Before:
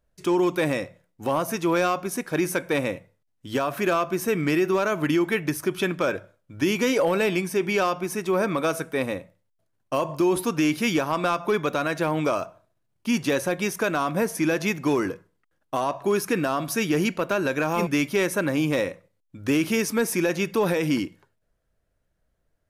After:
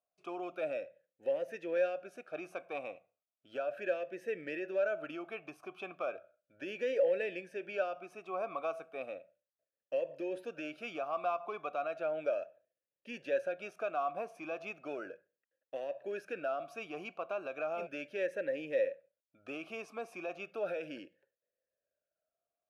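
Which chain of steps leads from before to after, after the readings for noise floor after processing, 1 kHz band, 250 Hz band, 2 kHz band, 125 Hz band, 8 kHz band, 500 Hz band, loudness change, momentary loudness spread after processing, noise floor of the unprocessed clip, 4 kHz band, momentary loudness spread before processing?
under -85 dBFS, -13.5 dB, -23.0 dB, -15.0 dB, -30.0 dB, under -30 dB, -10.5 dB, -13.5 dB, 12 LU, -73 dBFS, -20.5 dB, 6 LU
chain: vowel sweep a-e 0.35 Hz; gain -3 dB

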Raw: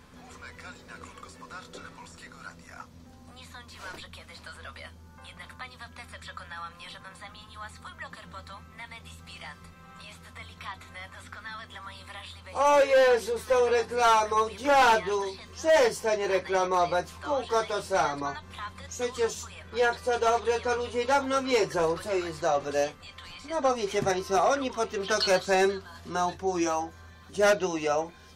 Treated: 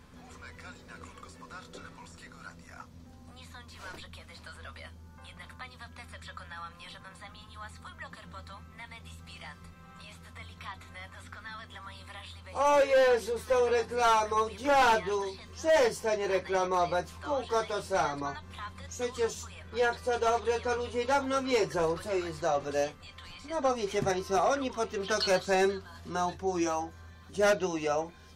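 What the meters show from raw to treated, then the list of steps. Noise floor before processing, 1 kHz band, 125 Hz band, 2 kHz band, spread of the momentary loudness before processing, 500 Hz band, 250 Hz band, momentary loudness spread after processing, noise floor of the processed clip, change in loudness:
-51 dBFS, -3.0 dB, 0.0 dB, -3.5 dB, 22 LU, -3.0 dB, -2.0 dB, 22 LU, -52 dBFS, -3.0 dB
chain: low shelf 220 Hz +4.5 dB; gain -3.5 dB

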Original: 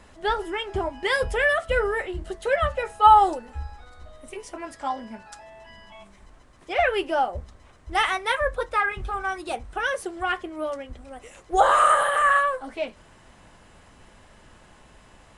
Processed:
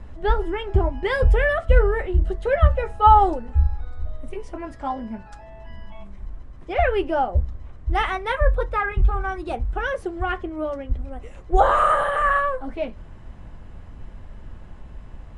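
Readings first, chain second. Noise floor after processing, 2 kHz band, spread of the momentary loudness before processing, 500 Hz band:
-42 dBFS, -2.0 dB, 20 LU, +2.5 dB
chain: RIAA curve playback

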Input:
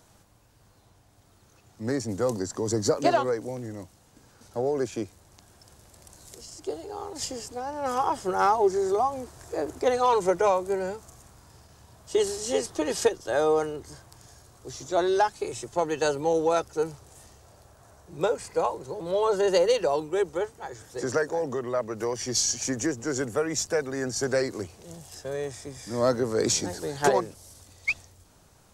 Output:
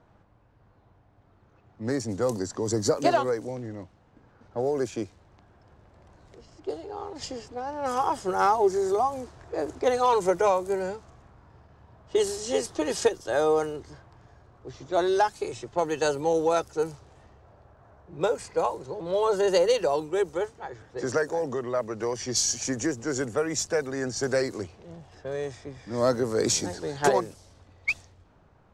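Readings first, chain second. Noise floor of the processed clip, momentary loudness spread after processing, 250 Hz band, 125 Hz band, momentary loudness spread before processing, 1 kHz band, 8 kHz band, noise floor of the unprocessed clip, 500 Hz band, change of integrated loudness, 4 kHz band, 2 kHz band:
-60 dBFS, 14 LU, 0.0 dB, 0.0 dB, 15 LU, 0.0 dB, -0.5 dB, -59 dBFS, 0.0 dB, 0.0 dB, -0.5 dB, 0.0 dB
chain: low-pass opened by the level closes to 1700 Hz, open at -23 dBFS

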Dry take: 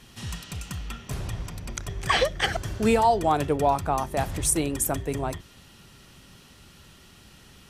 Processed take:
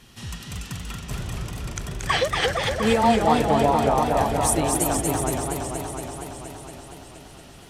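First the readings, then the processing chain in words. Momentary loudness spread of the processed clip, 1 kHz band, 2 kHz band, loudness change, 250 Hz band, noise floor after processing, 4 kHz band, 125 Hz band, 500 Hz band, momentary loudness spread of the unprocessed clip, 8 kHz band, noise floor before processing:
18 LU, +3.5 dB, +3.0 dB, +3.5 dB, +5.0 dB, -45 dBFS, +3.0 dB, +3.0 dB, +3.5 dB, 15 LU, +3.0 dB, -52 dBFS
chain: delay with a stepping band-pass 0.177 s, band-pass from 270 Hz, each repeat 0.7 oct, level -5 dB; warbling echo 0.234 s, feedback 75%, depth 136 cents, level -3.5 dB

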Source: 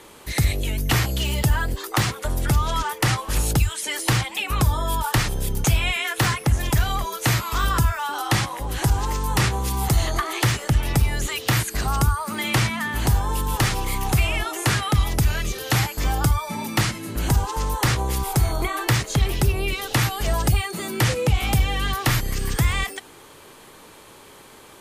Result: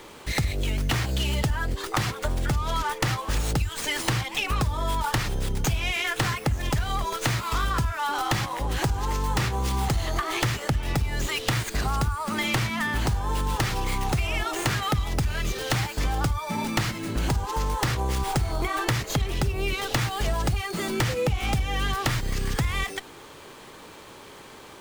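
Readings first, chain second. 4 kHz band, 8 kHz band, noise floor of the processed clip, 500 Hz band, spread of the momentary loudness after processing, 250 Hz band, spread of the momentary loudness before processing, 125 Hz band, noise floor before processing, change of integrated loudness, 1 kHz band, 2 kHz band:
-3.5 dB, -6.0 dB, -45 dBFS, -2.0 dB, 3 LU, -3.0 dB, 4 LU, -5.0 dB, -46 dBFS, -4.0 dB, -2.5 dB, -3.0 dB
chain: compressor, threshold -23 dBFS, peak gain reduction 9.5 dB; running maximum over 3 samples; gain +1.5 dB

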